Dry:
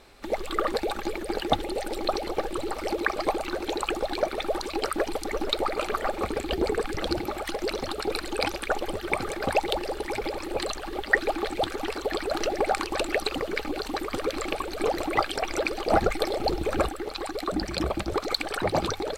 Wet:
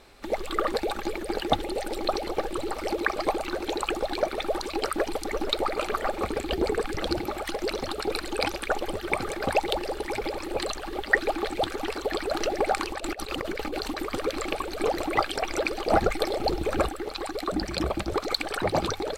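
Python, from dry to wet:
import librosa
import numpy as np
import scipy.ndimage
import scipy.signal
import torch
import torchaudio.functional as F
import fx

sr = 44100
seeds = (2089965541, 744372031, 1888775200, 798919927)

y = fx.over_compress(x, sr, threshold_db=-31.0, ratio=-0.5, at=(12.87, 14.03))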